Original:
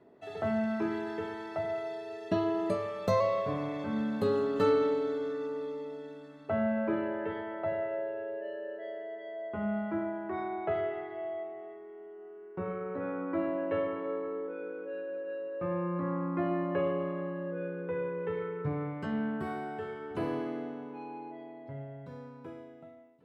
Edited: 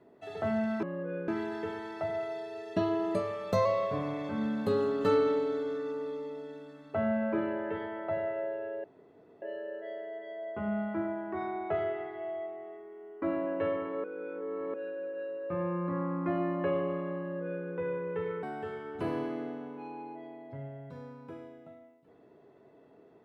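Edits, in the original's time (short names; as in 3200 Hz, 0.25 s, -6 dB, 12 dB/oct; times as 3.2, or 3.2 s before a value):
8.39 insert room tone 0.58 s
12.19–13.33 cut
14.15–14.85 reverse
17.31–17.76 copy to 0.83
18.54–19.59 cut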